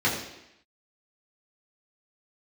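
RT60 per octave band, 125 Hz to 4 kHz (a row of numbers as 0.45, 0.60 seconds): 0.70, 0.85, 0.80, 0.85, 0.90, 0.85 seconds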